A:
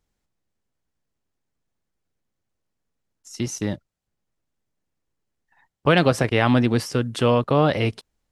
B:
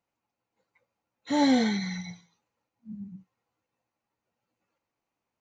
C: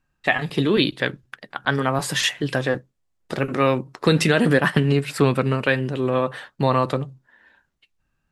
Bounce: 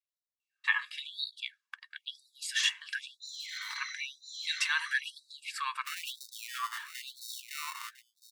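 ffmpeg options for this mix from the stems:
ffmpeg -i stem1.wav -i stem2.wav -i stem3.wav -filter_complex "[0:a]acrusher=samples=27:mix=1:aa=0.000001,volume=-8dB,asplit=2[link_01][link_02];[link_02]volume=-18.5dB[link_03];[1:a]adelay=1950,volume=2dB,asplit=2[link_04][link_05];[link_05]volume=-8dB[link_06];[2:a]lowpass=8900,aecho=1:1:1.8:0.51,adelay=400,volume=-8dB[link_07];[link_01][link_04]amix=inputs=2:normalize=0,asoftclip=type=tanh:threshold=-15.5dB,alimiter=limit=-23dB:level=0:latency=1:release=375,volume=0dB[link_08];[link_03][link_06]amix=inputs=2:normalize=0,aecho=0:1:1003:1[link_09];[link_07][link_08][link_09]amix=inputs=3:normalize=0,afftfilt=real='re*gte(b*sr/1024,830*pow(3700/830,0.5+0.5*sin(2*PI*1*pts/sr)))':imag='im*gte(b*sr/1024,830*pow(3700/830,0.5+0.5*sin(2*PI*1*pts/sr)))':win_size=1024:overlap=0.75" out.wav

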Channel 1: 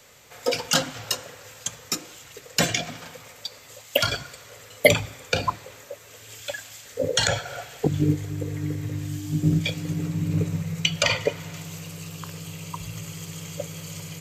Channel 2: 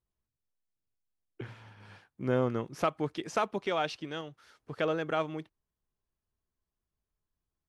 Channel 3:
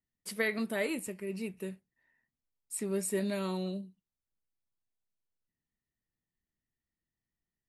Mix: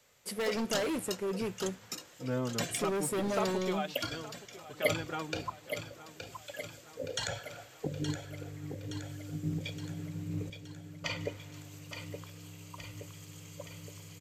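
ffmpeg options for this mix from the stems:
ffmpeg -i stem1.wav -i stem2.wav -i stem3.wav -filter_complex "[0:a]volume=-14dB,asplit=3[link_01][link_02][link_03];[link_01]atrim=end=10.5,asetpts=PTS-STARTPTS,afade=type=out:start_time=10.496:duration=0.004:curve=hsin[link_04];[link_02]atrim=start=10.5:end=11.04,asetpts=PTS-STARTPTS,volume=0[link_05];[link_03]atrim=start=11.04,asetpts=PTS-STARTPTS,afade=type=in:duration=0.004:curve=hsin[link_06];[link_04][link_05][link_06]concat=n=3:v=0:a=1,asplit=2[link_07][link_08];[link_08]volume=-8dB[link_09];[1:a]asplit=2[link_10][link_11];[link_11]adelay=3.9,afreqshift=-0.93[link_12];[link_10][link_12]amix=inputs=2:normalize=1,volume=-3dB,asplit=2[link_13][link_14];[link_14]volume=-15.5dB[link_15];[2:a]equalizer=frequency=490:width=0.86:gain=8,volume=31.5dB,asoftclip=hard,volume=-31.5dB,volume=1dB[link_16];[link_09][link_15]amix=inputs=2:normalize=0,aecho=0:1:870|1740|2610|3480|4350|5220|6090|6960|7830:1|0.58|0.336|0.195|0.113|0.0656|0.0381|0.0221|0.0128[link_17];[link_07][link_13][link_16][link_17]amix=inputs=4:normalize=0" out.wav

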